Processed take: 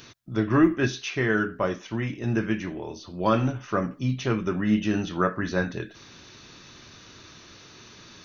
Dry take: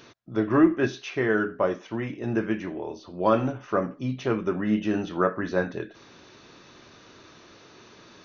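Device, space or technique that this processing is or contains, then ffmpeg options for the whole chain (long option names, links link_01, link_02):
smiley-face EQ: -af "lowshelf=frequency=160:gain=4.5,equalizer=frequency=540:width_type=o:width=2.5:gain=-7.5,highshelf=frequency=5700:gain=7,volume=4dB"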